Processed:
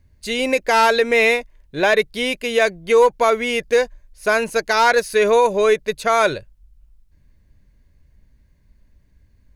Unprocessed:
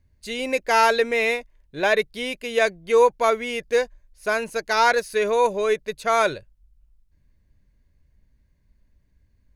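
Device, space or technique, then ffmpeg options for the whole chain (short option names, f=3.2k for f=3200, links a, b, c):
clipper into limiter: -af "asoftclip=type=hard:threshold=-9.5dB,alimiter=limit=-13.5dB:level=0:latency=1:release=98,volume=7dB"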